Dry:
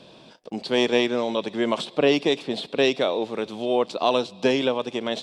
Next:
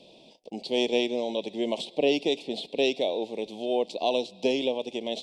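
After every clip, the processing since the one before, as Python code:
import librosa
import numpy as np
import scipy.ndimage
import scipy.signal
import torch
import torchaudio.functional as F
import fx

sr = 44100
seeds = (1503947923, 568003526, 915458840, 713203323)

y = scipy.signal.sosfilt(scipy.signal.cheby1(2, 1.0, [750.0, 2600.0], 'bandstop', fs=sr, output='sos'), x)
y = fx.peak_eq(y, sr, hz=120.0, db=-9.5, octaves=0.83)
y = y * 10.0 ** (-3.5 / 20.0)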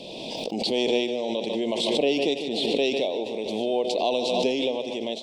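y = fx.echo_feedback(x, sr, ms=148, feedback_pct=59, wet_db=-13.0)
y = fx.pre_swell(y, sr, db_per_s=23.0)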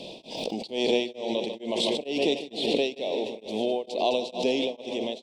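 y = fx.echo_split(x, sr, split_hz=1500.0, low_ms=323, high_ms=210, feedback_pct=52, wet_db=-14.0)
y = y * np.abs(np.cos(np.pi * 2.2 * np.arange(len(y)) / sr))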